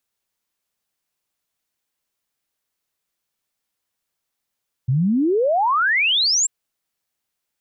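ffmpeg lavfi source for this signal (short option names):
-f lavfi -i "aevalsrc='0.178*clip(min(t,1.59-t)/0.01,0,1)*sin(2*PI*120*1.59/log(7700/120)*(exp(log(7700/120)*t/1.59)-1))':d=1.59:s=44100"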